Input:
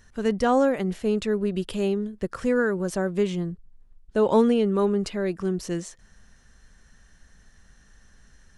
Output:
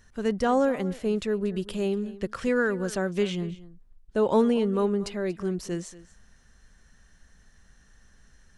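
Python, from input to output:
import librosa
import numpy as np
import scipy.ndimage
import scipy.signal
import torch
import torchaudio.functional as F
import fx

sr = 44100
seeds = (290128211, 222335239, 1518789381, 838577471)

y = fx.peak_eq(x, sr, hz=3100.0, db=7.0, octaves=1.7, at=(2.08, 3.41))
y = y + 10.0 ** (-18.0 / 20.0) * np.pad(y, (int(235 * sr / 1000.0), 0))[:len(y)]
y = y * 10.0 ** (-2.5 / 20.0)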